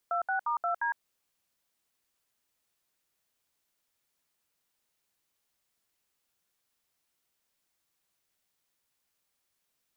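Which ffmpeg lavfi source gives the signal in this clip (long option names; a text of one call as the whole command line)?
ffmpeg -f lavfi -i "aevalsrc='0.0335*clip(min(mod(t,0.176),0.108-mod(t,0.176))/0.002,0,1)*(eq(floor(t/0.176),0)*(sin(2*PI*697*mod(t,0.176))+sin(2*PI*1336*mod(t,0.176)))+eq(floor(t/0.176),1)*(sin(2*PI*770*mod(t,0.176))+sin(2*PI*1477*mod(t,0.176)))+eq(floor(t/0.176),2)*(sin(2*PI*941*mod(t,0.176))+sin(2*PI*1209*mod(t,0.176)))+eq(floor(t/0.176),3)*(sin(2*PI*697*mod(t,0.176))+sin(2*PI*1336*mod(t,0.176)))+eq(floor(t/0.176),4)*(sin(2*PI*941*mod(t,0.176))+sin(2*PI*1633*mod(t,0.176))))':duration=0.88:sample_rate=44100" out.wav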